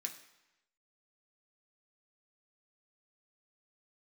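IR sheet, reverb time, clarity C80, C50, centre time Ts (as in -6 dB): 0.95 s, 12.5 dB, 10.0 dB, 16 ms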